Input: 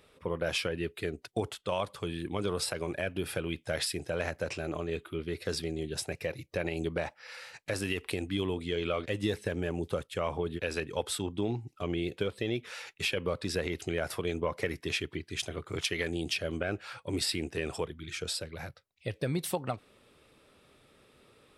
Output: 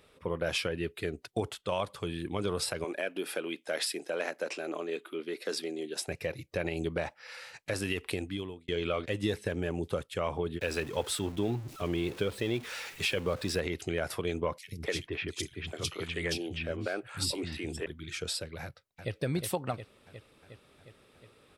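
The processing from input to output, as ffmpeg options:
ffmpeg -i in.wav -filter_complex "[0:a]asettb=1/sr,asplit=3[link_01][link_02][link_03];[link_01]atrim=end=2.844[link_04];[link_02]atrim=start=2.84:end=6.08,asetpts=PTS-STARTPTS,afade=type=in:duration=0.004:curve=qsin,afade=type=out:start_time=3.236:duration=0.004:curve=qsin,highpass=frequency=250:width=0.5412,highpass=frequency=250:width=1.3066[link_05];[link_03]atrim=start=6.076[link_06];[link_04][link_05]acrossfade=duration=0.004:curve1=hsin:curve2=qsin[link_07];[link_07][link_06]acrossfade=duration=0.004:curve1=qsin:curve2=hsin,asettb=1/sr,asplit=3[link_08][link_09][link_10];[link_08]atrim=end=10.614[link_11];[link_09]atrim=start=10.61:end=13.6,asetpts=PTS-STARTPTS,afade=type=in:duration=0.004:curve=qsin,afade=type=out:start_time=2.986:duration=0.004:curve=qsin,aeval=exprs='val(0)+0.5*0.00708*sgn(val(0))':channel_layout=same[link_12];[link_10]atrim=start=13.596[link_13];[link_11][link_12]acrossfade=duration=0.004:curve1=hsin:curve2=qsin[link_14];[link_14][link_13]acrossfade=duration=0.004:curve1=qsin:curve2=hsin,asettb=1/sr,asplit=3[link_15][link_16][link_17];[link_15]atrim=end=14.584[link_18];[link_16]atrim=start=14.58:end=17.86,asetpts=PTS-STARTPTS,afade=type=in:duration=0.004:curve=qsin,afade=type=out:start_time=3.276:duration=0.004:curve=qsin,acrossover=split=240|3000[link_19][link_20][link_21];[link_19]adelay=90[link_22];[link_20]adelay=250[link_23];[link_22][link_23][link_21]amix=inputs=3:normalize=0,atrim=end_sample=144648[link_24];[link_17]atrim=start=17.856[link_25];[link_18][link_24]acrossfade=duration=0.004:curve1=hsin:curve2=qsin[link_26];[link_26][link_25]acrossfade=duration=0.004:curve1=qsin:curve2=hsin,asplit=2[link_27][link_28];[link_28]afade=type=in:start_time=18.62:duration=0.01,afade=type=out:start_time=19.12:duration=0.01,aecho=0:1:360|720|1080|1440|1800|2160|2520|2880|3240|3600|3960:0.446684|0.312679|0.218875|0.153212|0.107249|0.0750741|0.0525519|0.0367863|0.0257504|0.0180253|0.0126177[link_29];[link_27][link_29]amix=inputs=2:normalize=0,asplit=2[link_30][link_31];[link_30]atrim=end=8.68,asetpts=PTS-STARTPTS,afade=type=out:start_time=8.15:duration=0.53[link_32];[link_31]atrim=start=8.68,asetpts=PTS-STARTPTS,afade=type=in:duration=0.004:curve=hsin[link_33];[link_32][link_33]concat=n=2:v=0:a=1" out.wav

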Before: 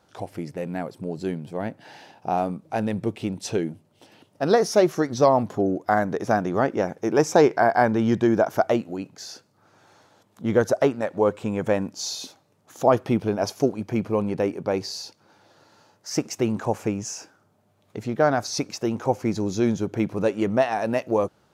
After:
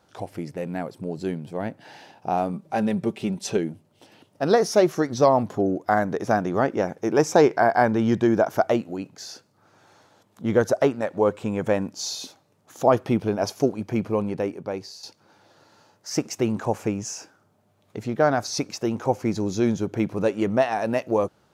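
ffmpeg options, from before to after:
ffmpeg -i in.wav -filter_complex "[0:a]asettb=1/sr,asplit=3[link_01][link_02][link_03];[link_01]atrim=end=2.534[link_04];[link_02]atrim=start=2.53:end=3.57,asetpts=PTS-STARTPTS,afade=type=in:duration=0.004:curve=qsin,afade=type=out:start_time=1.036:duration=0.004:curve=qsin,aecho=1:1:5.1:0.56,atrim=end_sample=45864[link_05];[link_03]atrim=start=3.566[link_06];[link_04][link_05]acrossfade=duration=0.004:curve1=hsin:curve2=qsin[link_07];[link_07][link_06]acrossfade=duration=0.004:curve1=qsin:curve2=hsin,asplit=2[link_08][link_09];[link_08]atrim=end=15.03,asetpts=PTS-STARTPTS,afade=type=out:start_time=14.08:duration=0.95:silence=0.298538[link_10];[link_09]atrim=start=15.03,asetpts=PTS-STARTPTS,afade=type=in:duration=0.004:curve=hsin:silence=0.298538[link_11];[link_10][link_11]concat=n=2:v=0:a=1" out.wav

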